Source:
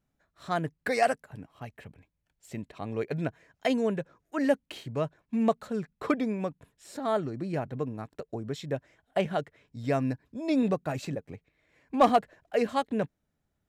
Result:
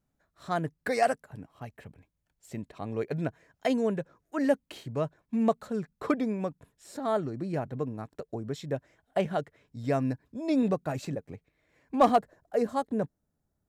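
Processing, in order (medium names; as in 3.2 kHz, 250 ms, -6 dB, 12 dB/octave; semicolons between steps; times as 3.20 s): peaking EQ 2.7 kHz -4 dB 1.3 oct, from 12.18 s -14 dB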